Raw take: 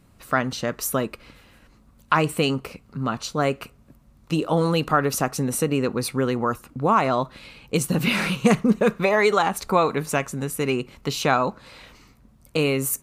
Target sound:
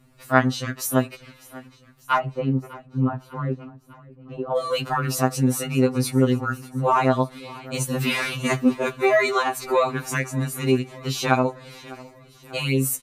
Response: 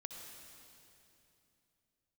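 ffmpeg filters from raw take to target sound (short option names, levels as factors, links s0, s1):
-filter_complex "[0:a]asplit=3[s0][s1][s2];[s0]afade=t=out:st=2.17:d=0.02[s3];[s1]lowpass=1000,afade=t=in:st=2.17:d=0.02,afade=t=out:st=4.55:d=0.02[s4];[s2]afade=t=in:st=4.55:d=0.02[s5];[s3][s4][s5]amix=inputs=3:normalize=0,aecho=1:1:599|1198|1797|2396|2995:0.0891|0.0526|0.031|0.0183|0.0108,afftfilt=real='re*2.45*eq(mod(b,6),0)':imag='im*2.45*eq(mod(b,6),0)':win_size=2048:overlap=0.75,volume=1.26"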